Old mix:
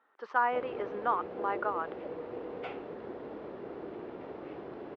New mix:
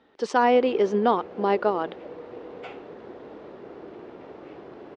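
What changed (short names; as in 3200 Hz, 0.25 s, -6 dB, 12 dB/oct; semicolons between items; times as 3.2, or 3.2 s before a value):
speech: remove band-pass 1300 Hz, Q 2.4; master: remove air absorption 150 m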